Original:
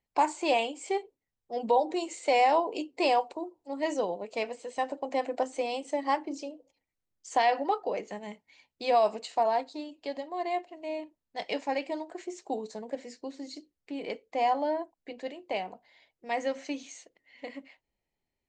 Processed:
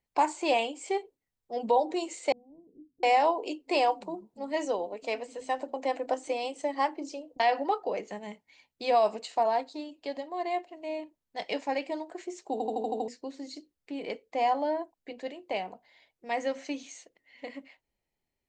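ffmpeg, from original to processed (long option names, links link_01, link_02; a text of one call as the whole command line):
ffmpeg -i in.wav -filter_complex "[0:a]asettb=1/sr,asplit=3[link_01][link_02][link_03];[link_01]atrim=end=2.324[link_04];[link_02]atrim=start=2.32:end=7.4,asetpts=PTS-STARTPTS,afade=type=in:duration=0.004:curve=qsin,afade=type=out:start_time=5.076:duration=0.004:curve=qsin,acrossover=split=200[link_05][link_06];[link_06]adelay=710[link_07];[link_05][link_07]amix=inputs=2:normalize=0,atrim=end_sample=224028[link_08];[link_03]atrim=start=7.396[link_09];[link_04][link_08]acrossfade=duration=0.004:curve1=hsin:curve2=qsin[link_10];[link_10][link_09]acrossfade=duration=0.004:curve1=qsin:curve2=hsin,asplit=8[link_11][link_12][link_13][link_14][link_15][link_16][link_17][link_18];[link_11]atrim=end=12.602[link_19];[link_12]atrim=start=12.518:end=12.602[link_20];[link_13]atrim=start=12.518:end=12.602[link_21];[link_14]atrim=start=12.518:end=12.602[link_22];[link_15]atrim=start=12.518:end=12.602[link_23];[link_16]atrim=start=12.518:end=12.602[link_24];[link_17]atrim=start=12.518:end=12.602[link_25];[link_18]atrim=start=13.078[link_26];[link_19][link_20]acrossfade=duration=0.004:curve1=hsin:curve2=hsin[link_27];[link_27][link_21]acrossfade=duration=0.004:curve1=hsin:curve2=hsin[link_28];[link_28][link_22]acrossfade=duration=0.004:curve1=hsin:curve2=hsin[link_29];[link_29][link_23]acrossfade=duration=0.004:curve1=hsin:curve2=hsin[link_30];[link_30][link_24]acrossfade=duration=0.004:curve1=hsin:curve2=hsin[link_31];[link_31][link_25]acrossfade=duration=0.004:curve1=hsin:curve2=hsin[link_32];[link_32][link_26]acrossfade=duration=0.004:curve1=hsin:curve2=hsin" out.wav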